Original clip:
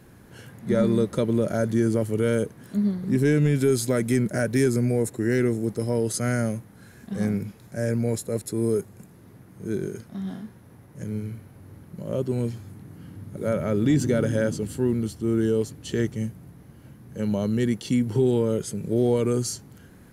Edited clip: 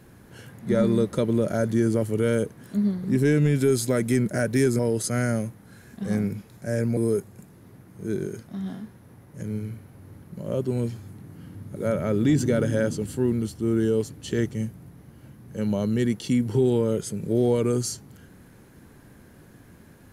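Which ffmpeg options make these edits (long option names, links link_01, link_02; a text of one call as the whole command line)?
ffmpeg -i in.wav -filter_complex "[0:a]asplit=3[link_01][link_02][link_03];[link_01]atrim=end=4.792[link_04];[link_02]atrim=start=5.888:end=8.072[link_05];[link_03]atrim=start=8.578[link_06];[link_04][link_05]acrossfade=duration=0.004:curve1=hsin:curve2=hsin[link_07];[link_07][link_06]acrossfade=duration=0.004:curve1=hsin:curve2=hsin" out.wav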